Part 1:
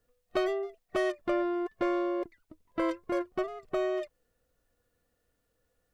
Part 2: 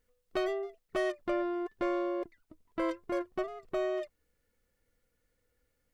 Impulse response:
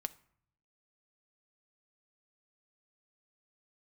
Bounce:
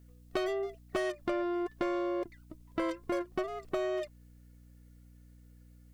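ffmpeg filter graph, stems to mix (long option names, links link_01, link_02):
-filter_complex "[0:a]aeval=exprs='val(0)+0.00316*(sin(2*PI*60*n/s)+sin(2*PI*2*60*n/s)/2+sin(2*PI*3*60*n/s)/3+sin(2*PI*4*60*n/s)/4+sin(2*PI*5*60*n/s)/5)':channel_layout=same,volume=-5dB[link_01];[1:a]highshelf=frequency=3100:gain=9,asoftclip=type=tanh:threshold=-22.5dB,volume=1dB[link_02];[link_01][link_02]amix=inputs=2:normalize=0,acompressor=threshold=-30dB:ratio=4"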